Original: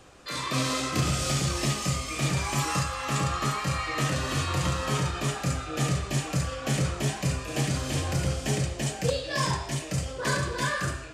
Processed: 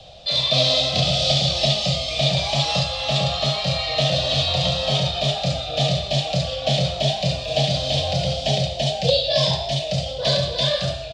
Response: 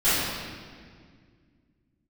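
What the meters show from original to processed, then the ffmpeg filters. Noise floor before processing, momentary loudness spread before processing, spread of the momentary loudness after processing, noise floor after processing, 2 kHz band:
-38 dBFS, 3 LU, 5 LU, -30 dBFS, +1.0 dB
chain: -filter_complex "[0:a]acrossover=split=7700[a][b];[b]acompressor=threshold=-47dB:ratio=4:attack=1:release=60[c];[a][c]amix=inputs=2:normalize=0,firequalizer=gain_entry='entry(150,0);entry(320,-20);entry(640,10);entry(990,-14);entry(1500,-17);entry(3600,11);entry(6700,-10);entry(11000,-21)':delay=0.05:min_phase=1,acrossover=split=150|760|2500[d][e][f][g];[d]acompressor=threshold=-40dB:ratio=6[h];[h][e][f][g]amix=inputs=4:normalize=0,volume=9dB"

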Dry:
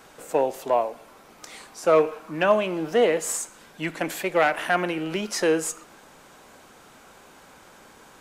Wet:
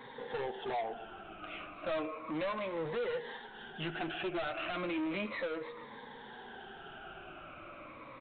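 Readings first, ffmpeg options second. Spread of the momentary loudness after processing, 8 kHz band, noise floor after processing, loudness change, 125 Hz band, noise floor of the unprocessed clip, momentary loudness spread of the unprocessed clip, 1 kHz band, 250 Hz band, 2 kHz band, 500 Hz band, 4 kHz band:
13 LU, under -40 dB, -51 dBFS, -15.5 dB, -10.5 dB, -51 dBFS, 12 LU, -13.0 dB, -10.0 dB, -11.5 dB, -15.0 dB, -9.5 dB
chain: -af "afftfilt=real='re*pow(10,16/40*sin(2*PI*(1*log(max(b,1)*sr/1024/100)/log(2)-(-0.34)*(pts-256)/sr)))':imag='im*pow(10,16/40*sin(2*PI*(1*log(max(b,1)*sr/1024/100)/log(2)-(-0.34)*(pts-256)/sr)))':win_size=1024:overlap=0.75,acompressor=threshold=-27dB:ratio=2.5,aresample=8000,asoftclip=type=tanh:threshold=-32.5dB,aresample=44100,flanger=delay=7.4:depth=2.4:regen=-31:speed=0.29:shape=triangular,volume=2.5dB"

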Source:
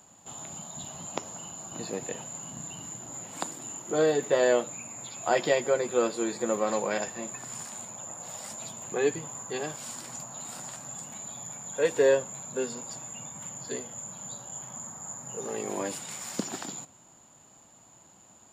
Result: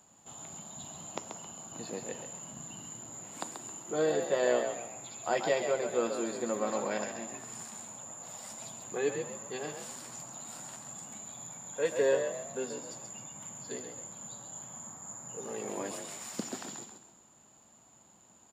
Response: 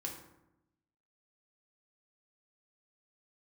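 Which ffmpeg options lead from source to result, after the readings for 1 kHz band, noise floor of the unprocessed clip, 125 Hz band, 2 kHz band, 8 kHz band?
-4.0 dB, -57 dBFS, -5.5 dB, -4.5 dB, -4.5 dB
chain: -filter_complex "[0:a]asplit=5[a][b][c][d][e];[b]adelay=134,afreqshift=50,volume=-7dB[f];[c]adelay=268,afreqshift=100,volume=-15.9dB[g];[d]adelay=402,afreqshift=150,volume=-24.7dB[h];[e]adelay=536,afreqshift=200,volume=-33.6dB[i];[a][f][g][h][i]amix=inputs=5:normalize=0,asplit=2[j][k];[1:a]atrim=start_sample=2205,asetrate=29988,aresample=44100[l];[k][l]afir=irnorm=-1:irlink=0,volume=-16.5dB[m];[j][m]amix=inputs=2:normalize=0,volume=-6.5dB"

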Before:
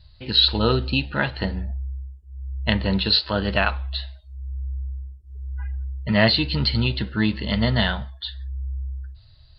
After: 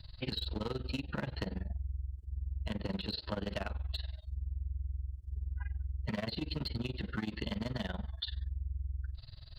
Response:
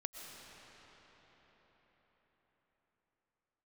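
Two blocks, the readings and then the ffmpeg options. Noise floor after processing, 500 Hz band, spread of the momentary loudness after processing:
-52 dBFS, -16.0 dB, 5 LU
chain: -filter_complex "[0:a]acrossover=split=270|580[a][b][c];[a]acompressor=threshold=-30dB:ratio=4[d];[b]acompressor=threshold=-30dB:ratio=4[e];[c]acompressor=threshold=-35dB:ratio=4[f];[d][e][f]amix=inputs=3:normalize=0,asoftclip=type=hard:threshold=-24dB,tremolo=f=21:d=0.919,acompressor=threshold=-40dB:ratio=4,volume=5dB"

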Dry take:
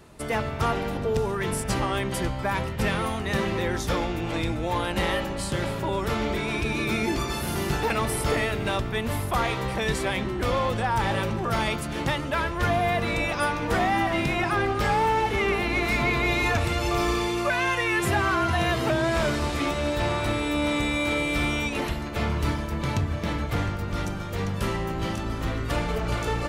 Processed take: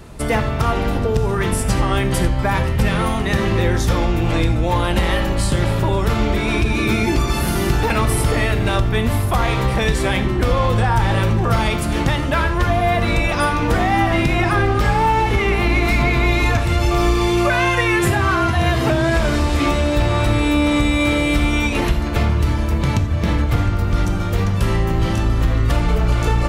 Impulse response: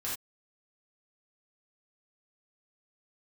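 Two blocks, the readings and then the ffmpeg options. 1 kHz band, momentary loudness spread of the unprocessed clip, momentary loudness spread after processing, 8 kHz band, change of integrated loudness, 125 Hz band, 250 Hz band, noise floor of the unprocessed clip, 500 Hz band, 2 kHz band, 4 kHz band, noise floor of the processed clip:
+6.0 dB, 5 LU, 3 LU, +6.0 dB, +8.0 dB, +11.5 dB, +8.5 dB, -31 dBFS, +6.0 dB, +5.5 dB, +5.5 dB, -21 dBFS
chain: -filter_complex "[0:a]lowshelf=f=110:g=10.5,acompressor=threshold=-22dB:ratio=6,asplit=2[a][b];[1:a]atrim=start_sample=2205[c];[b][c]afir=irnorm=-1:irlink=0,volume=-10dB[d];[a][d]amix=inputs=2:normalize=0,volume=7dB"

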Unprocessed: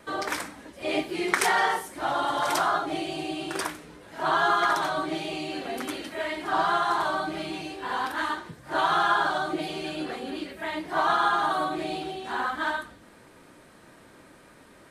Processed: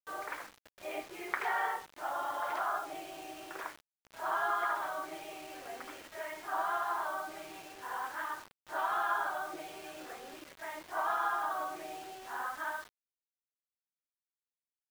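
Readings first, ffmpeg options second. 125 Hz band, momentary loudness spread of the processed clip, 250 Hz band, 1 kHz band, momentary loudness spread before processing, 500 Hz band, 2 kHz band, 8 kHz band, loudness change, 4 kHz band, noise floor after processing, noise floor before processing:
under -20 dB, 14 LU, -18.5 dB, -9.0 dB, 11 LU, -11.5 dB, -10.0 dB, -12.5 dB, -10.0 dB, -16.5 dB, under -85 dBFS, -53 dBFS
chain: -filter_complex "[0:a]lowpass=7.5k,acrossover=split=450 2600:gain=0.141 1 0.0794[a][b][c];[a][b][c]amix=inputs=3:normalize=0,acrusher=bits=6:mix=0:aa=0.000001,volume=-8.5dB"

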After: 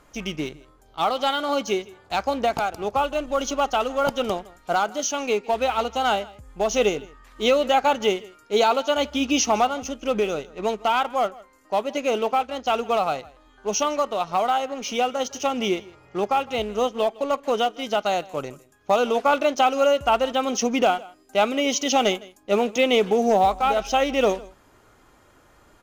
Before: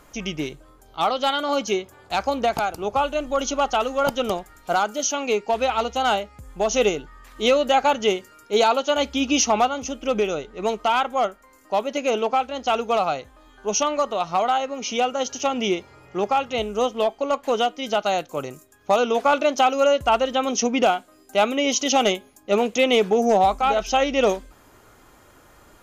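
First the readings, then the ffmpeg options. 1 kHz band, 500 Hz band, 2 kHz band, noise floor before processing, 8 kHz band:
-1.0 dB, -1.0 dB, -1.0 dB, -53 dBFS, -2.5 dB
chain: -filter_complex "[0:a]highshelf=f=11k:g=-9.5,asplit=2[a][b];[b]acrusher=bits=4:mix=0:aa=0.5,volume=-9dB[c];[a][c]amix=inputs=2:normalize=0,aecho=1:1:159:0.0794,volume=-3.5dB"

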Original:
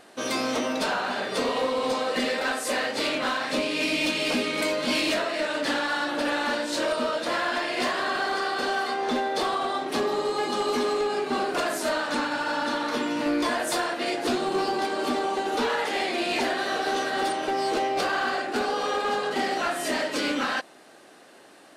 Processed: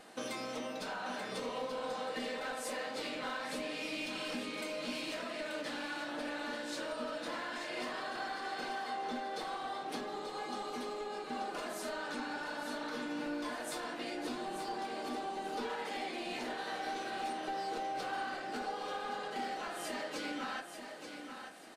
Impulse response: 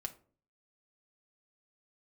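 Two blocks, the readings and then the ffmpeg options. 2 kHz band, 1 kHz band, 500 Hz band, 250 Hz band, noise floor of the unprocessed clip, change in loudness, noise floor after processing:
-13.5 dB, -12.0 dB, -14.0 dB, -13.0 dB, -51 dBFS, -13.5 dB, -47 dBFS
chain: -filter_complex "[0:a]acompressor=threshold=-34dB:ratio=12,aecho=1:1:884|1768|2652|3536:0.398|0.127|0.0408|0.013[a];[1:a]atrim=start_sample=2205,asetrate=52920,aresample=44100[b];[a][b]afir=irnorm=-1:irlink=0"

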